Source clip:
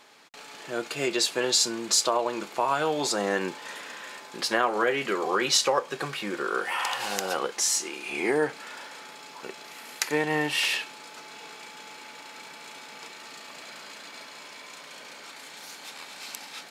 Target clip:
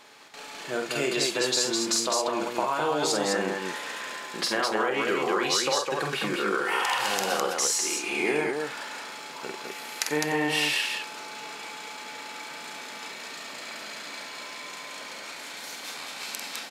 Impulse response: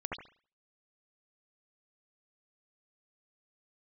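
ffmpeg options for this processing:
-filter_complex "[0:a]acompressor=threshold=-26dB:ratio=6,asplit=2[a][b];[b]aecho=0:1:46.65|207:0.562|0.708[c];[a][c]amix=inputs=2:normalize=0,volume=2dB"

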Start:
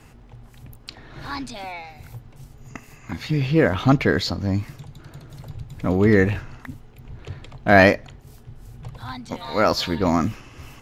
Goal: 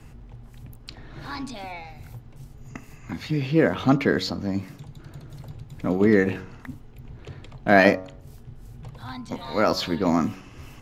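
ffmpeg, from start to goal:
-filter_complex "[0:a]lowshelf=f=240:g=10,bandreject=f=93.15:t=h:w=4,bandreject=f=186.3:t=h:w=4,bandreject=f=279.45:t=h:w=4,bandreject=f=372.6:t=h:w=4,bandreject=f=465.75:t=h:w=4,bandreject=f=558.9:t=h:w=4,bandreject=f=652.05:t=h:w=4,bandreject=f=745.2:t=h:w=4,bandreject=f=838.35:t=h:w=4,bandreject=f=931.5:t=h:w=4,bandreject=f=1.02465k:t=h:w=4,bandreject=f=1.1178k:t=h:w=4,bandreject=f=1.21095k:t=h:w=4,bandreject=f=1.3041k:t=h:w=4,bandreject=f=1.39725k:t=h:w=4,acrossover=split=180[a][b];[a]acompressor=threshold=-37dB:ratio=6[c];[c][b]amix=inputs=2:normalize=0,volume=-3.5dB"

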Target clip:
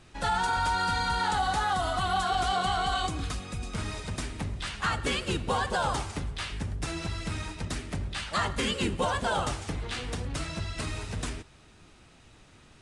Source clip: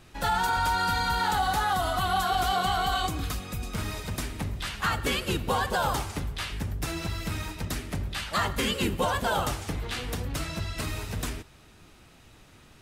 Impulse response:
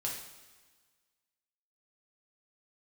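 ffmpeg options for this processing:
-af "aresample=22050,aresample=44100,volume=-1.5dB"

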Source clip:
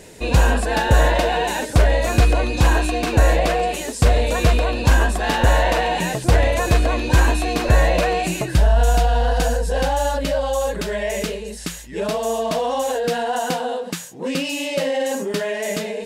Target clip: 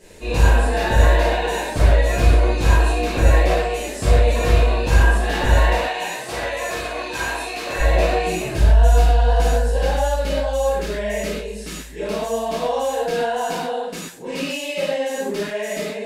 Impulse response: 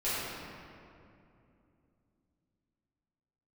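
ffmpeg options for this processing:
-filter_complex "[0:a]asettb=1/sr,asplit=3[a][b][c];[a]atrim=end=5.734[d];[b]atrim=start=5.73:end=7.79,asetpts=PTS-STARTPTS,afade=t=in:d=0.004:c=qsin,afade=t=out:st=2.056:d=0.004:c=qsin,highpass=f=830:p=1[e];[c]atrim=start=7.786[f];[d][e]acrossfade=d=0.004:c1=hsin:c2=qsin[g];[g][f]acrossfade=d=0.004:c1=qsin:c2=hsin[h];[1:a]atrim=start_sample=2205,atrim=end_sample=6174,asetrate=41013,aresample=44100[i];[h][i]afir=irnorm=-1:irlink=0,volume=-8dB"

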